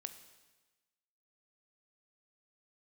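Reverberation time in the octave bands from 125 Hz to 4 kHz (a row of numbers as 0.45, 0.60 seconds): 1.2, 1.2, 1.2, 1.2, 1.2, 1.2 seconds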